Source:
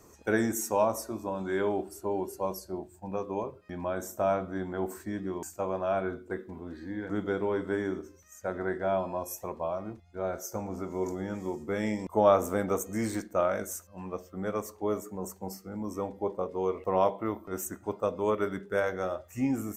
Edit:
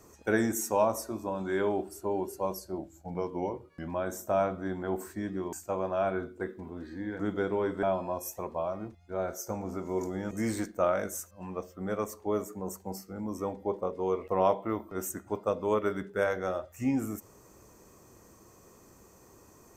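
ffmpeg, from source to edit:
ffmpeg -i in.wav -filter_complex "[0:a]asplit=5[link_01][link_02][link_03][link_04][link_05];[link_01]atrim=end=2.784[link_06];[link_02]atrim=start=2.78:end=3.78,asetpts=PTS-STARTPTS,asetrate=40131,aresample=44100[link_07];[link_03]atrim=start=3.776:end=7.732[link_08];[link_04]atrim=start=8.878:end=11.362[link_09];[link_05]atrim=start=12.868[link_10];[link_06][link_07]acrossfade=duration=0.004:curve1=hsin:curve2=hsin[link_11];[link_11][link_08]acrossfade=duration=0.004:curve1=hsin:curve2=hsin[link_12];[link_12][link_09]acrossfade=duration=0.004:curve1=hsin:curve2=hsin[link_13];[link_13][link_10]acrossfade=duration=0.004:curve1=hsin:curve2=hsin" out.wav

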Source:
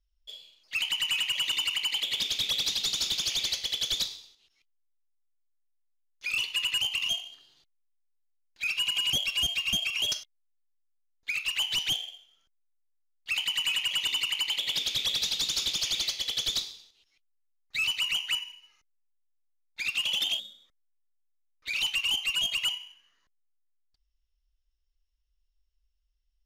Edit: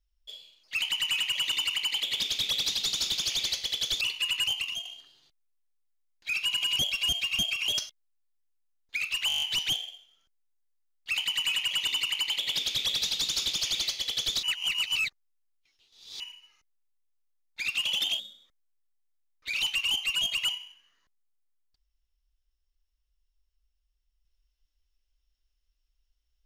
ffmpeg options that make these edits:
ffmpeg -i in.wav -filter_complex "[0:a]asplit=12[link_01][link_02][link_03][link_04][link_05][link_06][link_07][link_08][link_09][link_10][link_11][link_12];[link_01]atrim=end=4.012[link_13];[link_02]atrim=start=6.348:end=7.19,asetpts=PTS-STARTPTS,afade=type=out:start_time=0.552:duration=0.29:curve=qua:silence=0.446684[link_14];[link_03]atrim=start=7.19:end=11.642,asetpts=PTS-STARTPTS,afade=type=in:duration=0.004:curve=hsin:silence=0.446684[link_15];[link_04]atrim=start=11.618:end=11.642[link_16];[link_05]atrim=start=11.618:end=11.642[link_17];[link_06]atrim=start=11.618:end=11.642[link_18];[link_07]atrim=start=11.618:end=11.642[link_19];[link_08]atrim=start=11.618:end=11.642[link_20];[link_09]atrim=start=11.618:end=11.642[link_21];[link_10]atrim=start=11.618:end=16.632[link_22];[link_11]atrim=start=16.628:end=18.402,asetpts=PTS-STARTPTS,areverse[link_23];[link_12]atrim=start=18.398[link_24];[link_14][link_15]concat=n=2:v=0:a=1[link_25];[link_13][link_25]acrossfade=duration=0.004:curve1=hsin:curve2=hsin[link_26];[link_26][link_16]acrossfade=duration=0.004:curve1=hsin:curve2=hsin[link_27];[link_27][link_17]acrossfade=duration=0.004:curve1=hsin:curve2=hsin[link_28];[link_28][link_18]acrossfade=duration=0.004:curve1=hsin:curve2=hsin[link_29];[link_29][link_19]acrossfade=duration=0.004:curve1=hsin:curve2=hsin[link_30];[link_30][link_20]acrossfade=duration=0.004:curve1=hsin:curve2=hsin[link_31];[link_31][link_21]acrossfade=duration=0.004:curve1=hsin:curve2=hsin[link_32];[link_32][link_22]acrossfade=duration=0.004:curve1=hsin:curve2=hsin[link_33];[link_33][link_23]acrossfade=duration=0.004:curve1=hsin:curve2=hsin[link_34];[link_34][link_24]acrossfade=duration=0.004:curve1=hsin:curve2=hsin" out.wav

